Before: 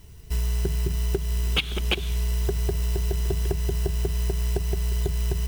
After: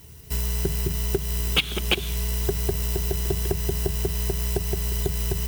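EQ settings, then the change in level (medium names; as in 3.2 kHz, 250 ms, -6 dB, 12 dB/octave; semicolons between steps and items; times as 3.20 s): high-pass 72 Hz; treble shelf 9.7 kHz +9 dB; +2.5 dB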